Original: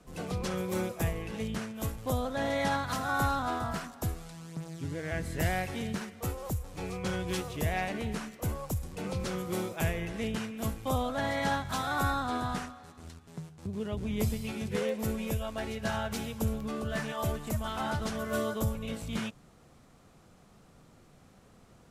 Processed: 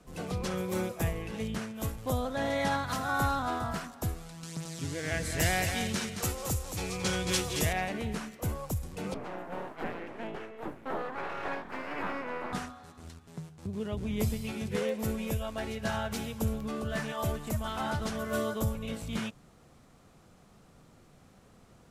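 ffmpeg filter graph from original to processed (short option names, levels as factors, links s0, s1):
-filter_complex "[0:a]asettb=1/sr,asplit=3[s0][s1][s2];[s0]atrim=end=4.434[s3];[s1]atrim=start=4.43:end=7.73,asetpts=PTS-STARTPTS,afade=t=in:d=0.004:c=qsin,afade=t=out:st=3.296:d=0.004:c=qsin,equalizer=f=6300:w=0.4:g=10.5,acompressor=mode=upward:threshold=0.0158:ratio=2.5:attack=3.2:release=140:knee=2.83:detection=peak,aecho=1:1:223:0.447,atrim=end_sample=145530[s4];[s2]atrim=start=7.726[s5];[s3][s4]acrossfade=d=0.004:c1=hsin:c2=qsin[s6];[s6][s5]acrossfade=d=0.004:c1=qsin:c2=hsin,asettb=1/sr,asplit=3[s7][s8][s9];[s7]atrim=end=9.144[s10];[s8]atrim=start=9.14:end=12.53,asetpts=PTS-STARTPTS,afade=t=in:d=0.004:c=qsin,afade=t=out:st=3.386:d=0.004:c=qsin,acrossover=split=4500[s11][s12];[s12]acompressor=threshold=0.00282:ratio=4:attack=1:release=60[s13];[s11][s13]amix=inputs=2:normalize=0,aeval=exprs='abs(val(0))':c=same,acrossover=split=180 2300:gain=0.251 1 0.141[s14][s15][s16];[s14][s15][s16]amix=inputs=3:normalize=0[s17];[s9]atrim=start=12.526[s18];[s10][s17]acrossfade=d=0.004:c1=hsin:c2=qsin[s19];[s19][s18]acrossfade=d=0.004:c1=qsin:c2=hsin"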